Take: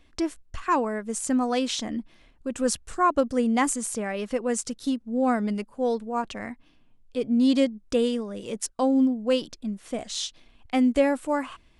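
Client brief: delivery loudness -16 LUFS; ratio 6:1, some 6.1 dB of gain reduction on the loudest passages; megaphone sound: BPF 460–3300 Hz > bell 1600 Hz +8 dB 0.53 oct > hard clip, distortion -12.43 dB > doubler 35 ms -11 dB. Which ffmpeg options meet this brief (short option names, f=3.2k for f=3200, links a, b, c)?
-filter_complex "[0:a]acompressor=threshold=-23dB:ratio=6,highpass=460,lowpass=3.3k,equalizer=f=1.6k:t=o:w=0.53:g=8,asoftclip=type=hard:threshold=-24.5dB,asplit=2[a][b];[b]adelay=35,volume=-11dB[c];[a][c]amix=inputs=2:normalize=0,volume=18dB"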